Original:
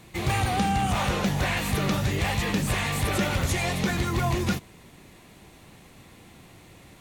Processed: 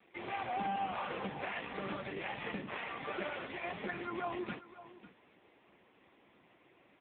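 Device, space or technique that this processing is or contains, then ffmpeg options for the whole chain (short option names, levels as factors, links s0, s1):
satellite phone: -filter_complex "[0:a]asettb=1/sr,asplit=3[s0][s1][s2];[s0]atrim=end=2.734[s3];[s1]atrim=start=2.73:end=3.34,asetpts=PTS-STARTPTS,afade=t=in:d=0.004:c=qsin,afade=t=out:st=0.606:d=0.004:c=qsin,highpass=f=93:p=1[s4];[s2]atrim=start=3.336[s5];[s3][s4]acrossfade=d=0.004:c1=hsin:c2=qsin[s6];[s6][s5]acrossfade=d=0.004:c1=qsin:c2=hsin,highpass=300,lowpass=3300,aecho=1:1:544:0.158,volume=0.447" -ar 8000 -c:a libopencore_amrnb -b:a 5900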